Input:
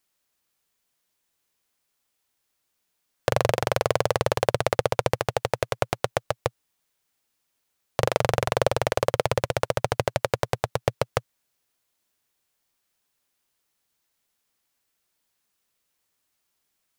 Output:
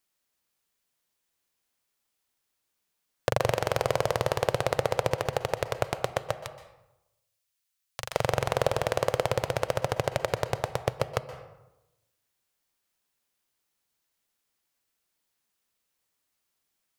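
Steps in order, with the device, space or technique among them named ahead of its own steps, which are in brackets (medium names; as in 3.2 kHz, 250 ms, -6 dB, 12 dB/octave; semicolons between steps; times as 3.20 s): 6.40–8.13 s: amplifier tone stack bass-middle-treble 10-0-10; saturated reverb return (on a send at -10 dB: reverberation RT60 0.95 s, pre-delay 119 ms + saturation -17 dBFS, distortion -17 dB); on the sum: trim -3.5 dB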